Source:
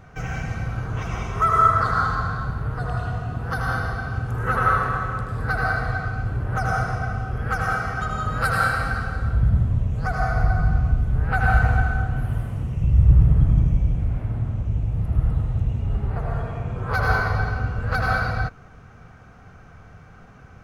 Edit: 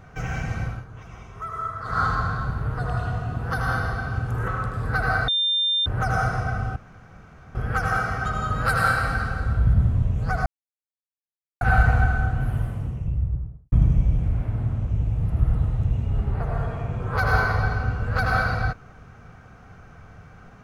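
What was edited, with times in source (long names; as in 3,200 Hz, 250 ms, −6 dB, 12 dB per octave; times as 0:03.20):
0:00.64–0:02.04: duck −14 dB, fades 0.21 s
0:04.48–0:05.03: remove
0:05.83–0:06.41: beep over 3,600 Hz −19 dBFS
0:07.31: splice in room tone 0.79 s
0:10.22–0:11.37: silence
0:12.27–0:13.48: fade out and dull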